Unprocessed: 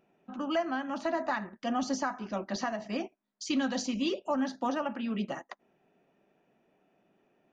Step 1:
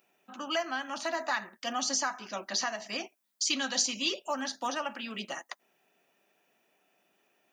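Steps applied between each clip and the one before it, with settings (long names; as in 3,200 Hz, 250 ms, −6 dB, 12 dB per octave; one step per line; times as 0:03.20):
spectral tilt +4.5 dB per octave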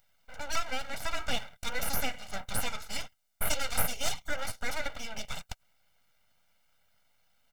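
full-wave rectification
comb filter 1.4 ms, depth 75%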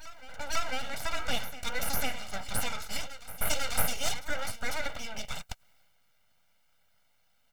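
backwards echo 498 ms −16.5 dB
transient designer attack +1 dB, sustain +5 dB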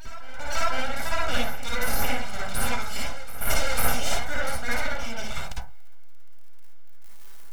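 converter with a step at zero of −32.5 dBFS
convolution reverb RT60 0.30 s, pre-delay 47 ms, DRR −6 dB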